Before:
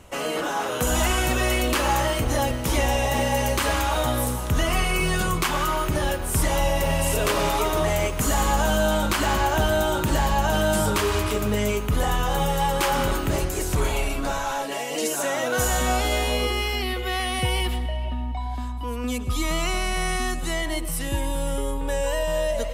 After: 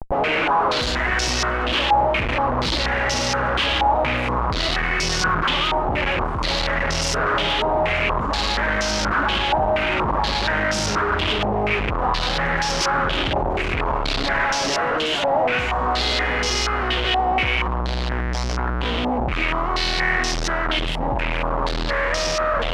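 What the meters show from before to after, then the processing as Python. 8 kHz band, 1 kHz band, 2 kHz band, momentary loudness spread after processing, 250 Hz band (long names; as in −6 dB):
−2.5 dB, +5.0 dB, +6.5 dB, 4 LU, 0.0 dB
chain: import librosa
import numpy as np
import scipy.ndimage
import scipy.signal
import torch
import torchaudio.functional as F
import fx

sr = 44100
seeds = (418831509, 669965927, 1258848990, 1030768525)

y = fx.schmitt(x, sr, flips_db=-38.5)
y = fx.filter_held_lowpass(y, sr, hz=4.2, low_hz=820.0, high_hz=5500.0)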